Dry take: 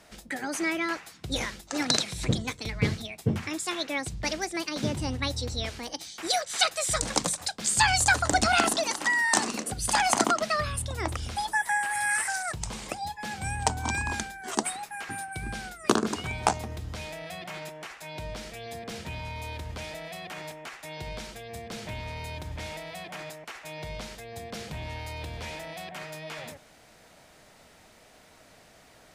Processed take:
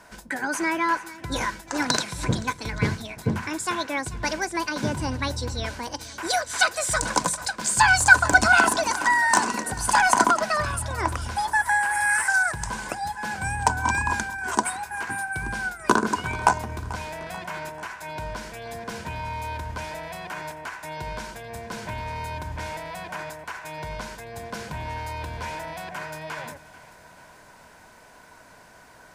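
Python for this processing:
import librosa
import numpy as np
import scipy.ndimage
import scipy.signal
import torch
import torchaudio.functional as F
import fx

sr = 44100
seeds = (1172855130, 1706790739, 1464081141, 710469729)

p1 = fx.peak_eq(x, sr, hz=3500.0, db=-4.5, octaves=0.78)
p2 = fx.small_body(p1, sr, hz=(1000.0, 1500.0), ring_ms=40, db=15)
p3 = 10.0 ** (-18.5 / 20.0) * np.tanh(p2 / 10.0 ** (-18.5 / 20.0))
p4 = p2 + (p3 * 10.0 ** (-5.5 / 20.0))
p5 = fx.echo_feedback(p4, sr, ms=438, feedback_pct=57, wet_db=-18.5)
y = p5 * 10.0 ** (-1.0 / 20.0)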